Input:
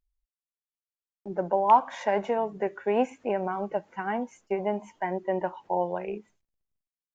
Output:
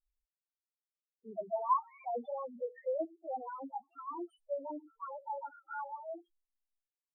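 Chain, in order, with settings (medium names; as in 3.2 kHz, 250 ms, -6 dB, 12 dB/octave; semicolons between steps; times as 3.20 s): pitch bend over the whole clip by +10 st starting unshifted; loudest bins only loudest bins 2; trim -5.5 dB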